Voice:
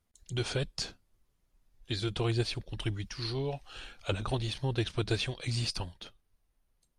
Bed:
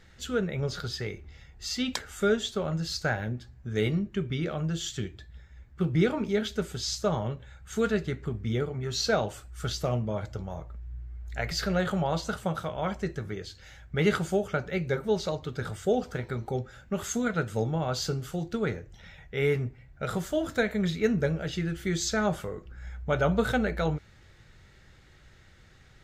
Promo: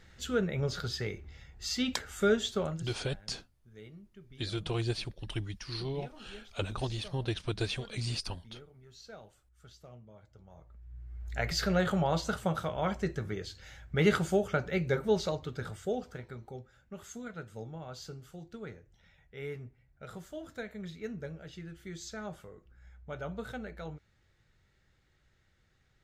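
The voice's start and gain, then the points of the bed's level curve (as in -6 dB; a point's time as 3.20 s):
2.50 s, -2.5 dB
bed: 2.64 s -1.5 dB
3.00 s -23.5 dB
10.27 s -23.5 dB
11.23 s -1 dB
15.18 s -1 dB
16.65 s -14.5 dB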